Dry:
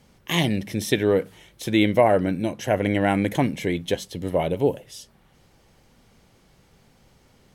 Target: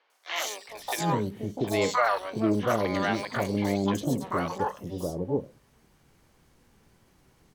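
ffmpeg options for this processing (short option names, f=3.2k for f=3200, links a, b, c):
-filter_complex "[0:a]asplit=2[a][b];[b]asetrate=88200,aresample=44100,atempo=0.5,volume=-3dB[c];[a][c]amix=inputs=2:normalize=0,acrossover=split=580|3900[d][e][f];[f]adelay=100[g];[d]adelay=690[h];[h][e][g]amix=inputs=3:normalize=0,volume=-5.5dB"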